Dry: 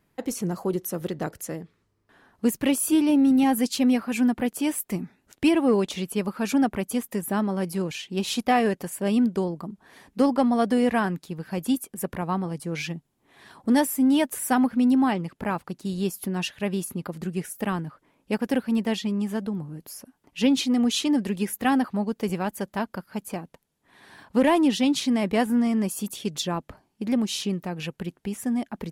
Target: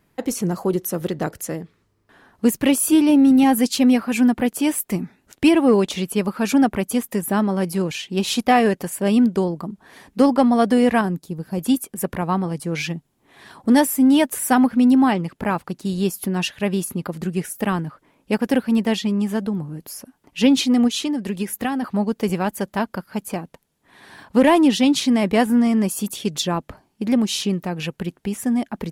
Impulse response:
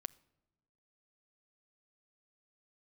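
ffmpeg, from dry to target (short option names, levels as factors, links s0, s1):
-filter_complex "[0:a]asettb=1/sr,asplit=3[s0][s1][s2];[s0]atrim=end=11.014[s3];[s1]atrim=start=11.01:end=11.59,asetpts=PTS-STARTPTS,afade=t=in:d=0.004:c=qsin,afade=t=out:st=0.576:d=0.004:c=qsin,equalizer=f=2100:w=0.51:g=-11.5[s4];[s2]atrim=start=11.586[s5];[s3][s4]acrossfade=d=0.004:c1=hsin:c2=qsin[s6];[s6][s5]acrossfade=d=0.004:c1=qsin:c2=hsin,asplit=3[s7][s8][s9];[s7]afade=t=out:st=20.87:d=0.02[s10];[s8]acompressor=threshold=0.0501:ratio=6,afade=t=in:st=20.87:d=0.02,afade=t=out:st=21.82:d=0.02[s11];[s9]afade=t=in:st=21.82:d=0.02[s12];[s10][s11][s12]amix=inputs=3:normalize=0,volume=1.88"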